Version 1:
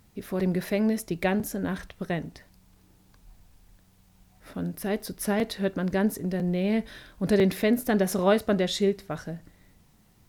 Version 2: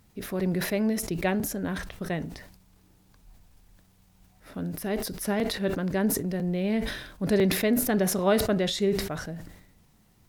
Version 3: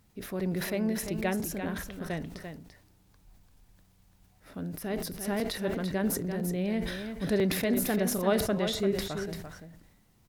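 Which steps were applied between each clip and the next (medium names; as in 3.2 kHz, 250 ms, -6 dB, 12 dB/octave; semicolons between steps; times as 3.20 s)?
decay stretcher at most 66 dB/s; trim -1.5 dB
delay 342 ms -8 dB; trim -4 dB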